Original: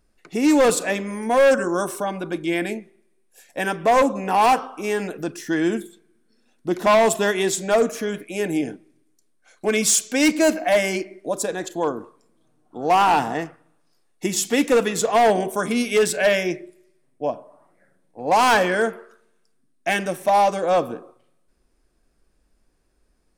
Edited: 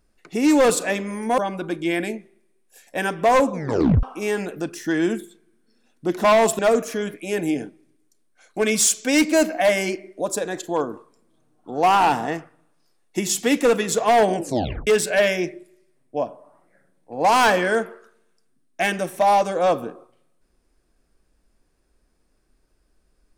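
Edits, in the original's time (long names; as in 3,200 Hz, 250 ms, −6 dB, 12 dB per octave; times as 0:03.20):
0:01.38–0:02.00: remove
0:04.14: tape stop 0.51 s
0:07.21–0:07.66: remove
0:15.42: tape stop 0.52 s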